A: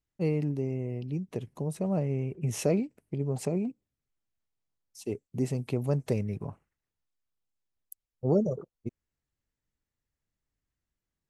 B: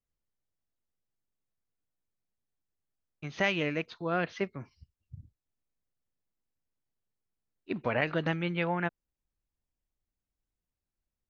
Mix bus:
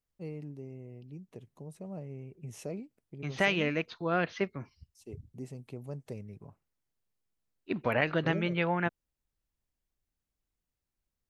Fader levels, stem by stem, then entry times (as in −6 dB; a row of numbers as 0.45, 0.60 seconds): −13.0, +1.0 decibels; 0.00, 0.00 seconds